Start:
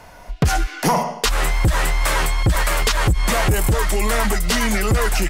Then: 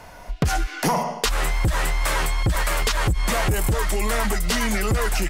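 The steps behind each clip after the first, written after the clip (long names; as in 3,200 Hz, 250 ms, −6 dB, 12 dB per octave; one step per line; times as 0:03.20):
downward compressor 2 to 1, threshold −21 dBFS, peak gain reduction 5 dB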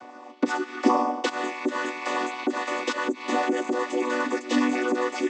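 channel vocoder with a chord as carrier minor triad, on B3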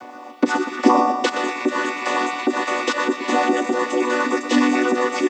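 bit-depth reduction 12 bits, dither none
repeating echo 120 ms, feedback 57%, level −10 dB
level +6 dB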